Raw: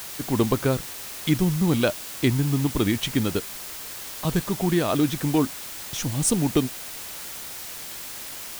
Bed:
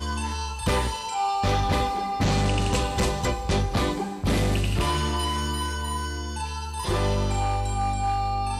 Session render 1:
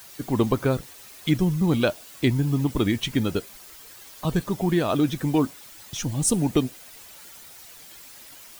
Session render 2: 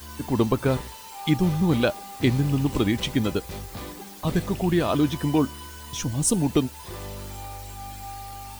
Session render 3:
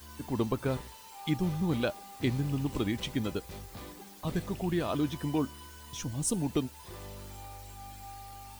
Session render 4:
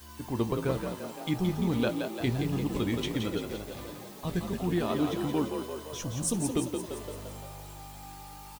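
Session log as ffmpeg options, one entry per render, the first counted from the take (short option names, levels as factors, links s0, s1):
-af "afftdn=nr=11:nf=-37"
-filter_complex "[1:a]volume=0.224[s0];[0:a][s0]amix=inputs=2:normalize=0"
-af "volume=0.376"
-filter_complex "[0:a]asplit=2[s0][s1];[s1]adelay=17,volume=0.251[s2];[s0][s2]amix=inputs=2:normalize=0,asplit=2[s3][s4];[s4]asplit=8[s5][s6][s7][s8][s9][s10][s11][s12];[s5]adelay=172,afreqshift=50,volume=0.501[s13];[s6]adelay=344,afreqshift=100,volume=0.295[s14];[s7]adelay=516,afreqshift=150,volume=0.174[s15];[s8]adelay=688,afreqshift=200,volume=0.104[s16];[s9]adelay=860,afreqshift=250,volume=0.061[s17];[s10]adelay=1032,afreqshift=300,volume=0.0359[s18];[s11]adelay=1204,afreqshift=350,volume=0.0211[s19];[s12]adelay=1376,afreqshift=400,volume=0.0124[s20];[s13][s14][s15][s16][s17][s18][s19][s20]amix=inputs=8:normalize=0[s21];[s3][s21]amix=inputs=2:normalize=0"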